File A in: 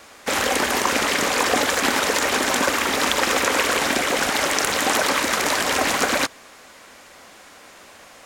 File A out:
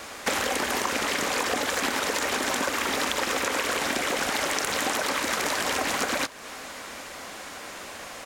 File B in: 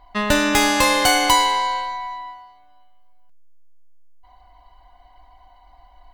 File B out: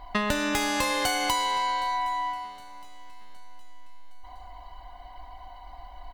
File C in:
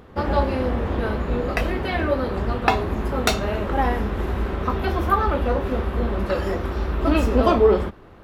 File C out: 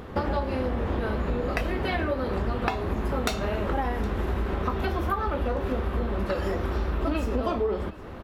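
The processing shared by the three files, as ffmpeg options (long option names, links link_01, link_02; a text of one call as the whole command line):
ffmpeg -i in.wav -af "acompressor=threshold=-30dB:ratio=8,aecho=1:1:765|1530|2295|3060:0.0841|0.0421|0.021|0.0105,volume=6dB" out.wav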